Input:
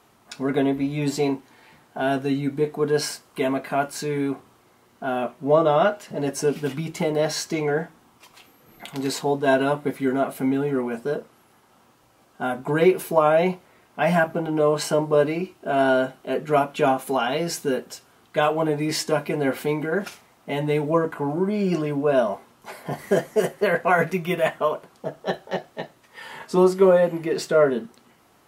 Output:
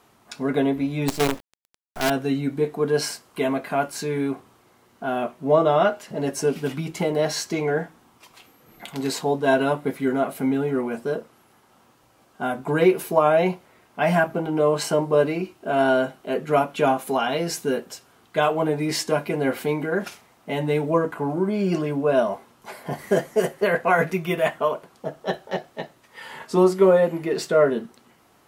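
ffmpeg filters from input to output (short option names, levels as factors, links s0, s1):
-filter_complex "[0:a]asettb=1/sr,asplit=3[s0][s1][s2];[s0]atrim=end=1.084[s3];[s1]atrim=start=1.08:end=2.1,asetpts=PTS-STARTPTS,afade=t=in:d=0.004:c=qsin,afade=t=out:st=1.016:d=0.004:c=qsin,acrusher=bits=4:dc=4:mix=0:aa=0.000001[s4];[s2]atrim=start=2.096[s5];[s3][s4]acrossfade=d=0.004:c1=hsin:c2=qsin[s6];[s6][s5]acrossfade=d=0.004:c1=qsin:c2=hsin"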